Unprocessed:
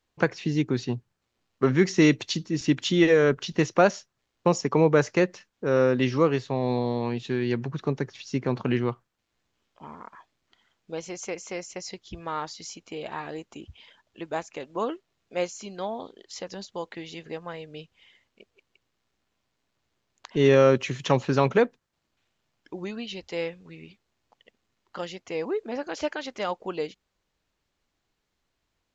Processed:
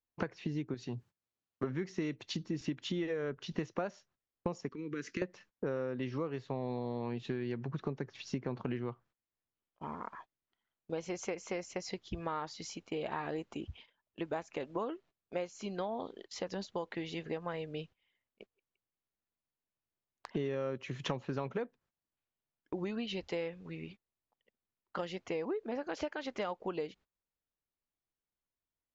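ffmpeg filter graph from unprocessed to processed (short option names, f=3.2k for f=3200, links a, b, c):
-filter_complex "[0:a]asettb=1/sr,asplit=3[a][b][c];[a]atrim=end=0.744[d];[b]atrim=start=0.74:end=1.64,asetpts=PTS-STARTPTS,afade=t=in:d=0.004:c=qsin,afade=t=out:st=0.896:d=0.004:c=qsin,highpass=60,aemphasis=mode=production:type=50kf,acompressor=threshold=-35dB:ratio=2:attack=3.2:release=140:knee=1:detection=peak[e];[c]atrim=start=1.636[f];[d][e]acrossfade=d=0.004:c1=hsin:c2=qsin[g];[g][f]acrossfade=d=0.004:c1=qsin:c2=hsin,asettb=1/sr,asplit=3[h][i][j];[h]atrim=end=4.694[k];[i]atrim=start=4.69:end=5.22,asetpts=PTS-STARTPTS,afade=t=in:d=0.004:c=qsin,afade=t=out:st=0.526:d=0.004:c=qsin,lowshelf=f=170:t=q:w=1.5:g=-12.5,acompressor=threshold=-31dB:ratio=3:attack=3.2:release=140:knee=1:detection=peak,asuperstop=centerf=720:order=4:qfactor=0.54[l];[j]atrim=start=5.216[m];[k][l]acrossfade=d=0.004:c1=hsin:c2=qsin[n];[n][m]acrossfade=d=0.004:c1=qsin:c2=hsin,lowpass=f=2.6k:p=1,agate=range=-20dB:threshold=-52dB:ratio=16:detection=peak,acompressor=threshold=-34dB:ratio=12,volume=1dB"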